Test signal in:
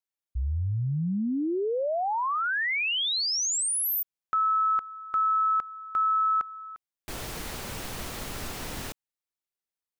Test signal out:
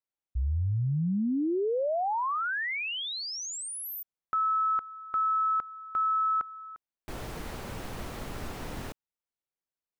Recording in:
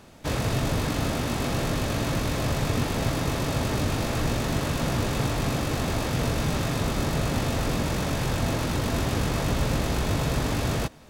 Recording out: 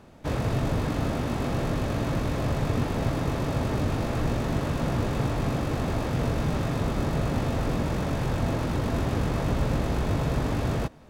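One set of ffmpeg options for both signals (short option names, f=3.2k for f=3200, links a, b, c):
-af "highshelf=f=2.3k:g=-10.5"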